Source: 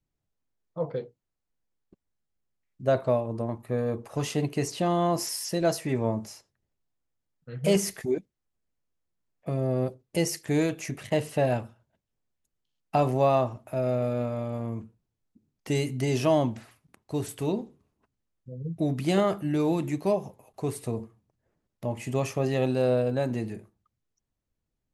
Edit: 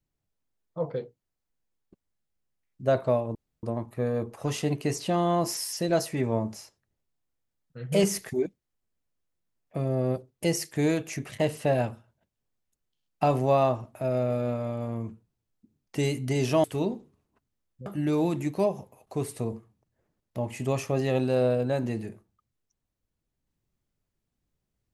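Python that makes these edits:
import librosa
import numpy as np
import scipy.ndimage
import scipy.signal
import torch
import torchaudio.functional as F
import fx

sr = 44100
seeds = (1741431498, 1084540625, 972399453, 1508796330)

y = fx.edit(x, sr, fx.insert_room_tone(at_s=3.35, length_s=0.28),
    fx.cut(start_s=16.36, length_s=0.95),
    fx.cut(start_s=18.53, length_s=0.8), tone=tone)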